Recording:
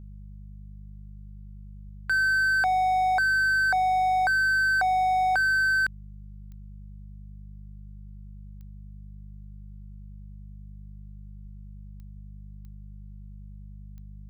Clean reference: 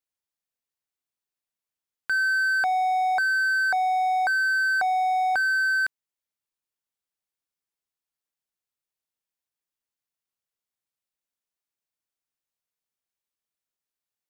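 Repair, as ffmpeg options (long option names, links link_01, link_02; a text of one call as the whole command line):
ffmpeg -i in.wav -filter_complex "[0:a]adeclick=threshold=4,bandreject=frequency=50.3:width_type=h:width=4,bandreject=frequency=100.6:width_type=h:width=4,bandreject=frequency=150.9:width_type=h:width=4,bandreject=frequency=201.2:width_type=h:width=4,asplit=3[link_01][link_02][link_03];[link_01]afade=type=out:start_time=1.84:duration=0.02[link_04];[link_02]highpass=frequency=140:width=0.5412,highpass=frequency=140:width=1.3066,afade=type=in:start_time=1.84:duration=0.02,afade=type=out:start_time=1.96:duration=0.02[link_05];[link_03]afade=type=in:start_time=1.96:duration=0.02[link_06];[link_04][link_05][link_06]amix=inputs=3:normalize=0,asplit=3[link_07][link_08][link_09];[link_07]afade=type=out:start_time=11.42:duration=0.02[link_10];[link_08]highpass=frequency=140:width=0.5412,highpass=frequency=140:width=1.3066,afade=type=in:start_time=11.42:duration=0.02,afade=type=out:start_time=11.54:duration=0.02[link_11];[link_09]afade=type=in:start_time=11.54:duration=0.02[link_12];[link_10][link_11][link_12]amix=inputs=3:normalize=0,asplit=3[link_13][link_14][link_15];[link_13]afade=type=out:start_time=12.13:duration=0.02[link_16];[link_14]highpass=frequency=140:width=0.5412,highpass=frequency=140:width=1.3066,afade=type=in:start_time=12.13:duration=0.02,afade=type=out:start_time=12.25:duration=0.02[link_17];[link_15]afade=type=in:start_time=12.25:duration=0.02[link_18];[link_16][link_17][link_18]amix=inputs=3:normalize=0" out.wav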